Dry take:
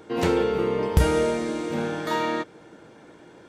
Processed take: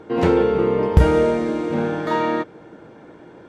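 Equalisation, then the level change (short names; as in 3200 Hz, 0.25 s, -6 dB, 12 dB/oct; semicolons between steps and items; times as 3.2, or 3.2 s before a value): high shelf 2700 Hz -11.5 dB; high shelf 9700 Hz -8.5 dB; +6.0 dB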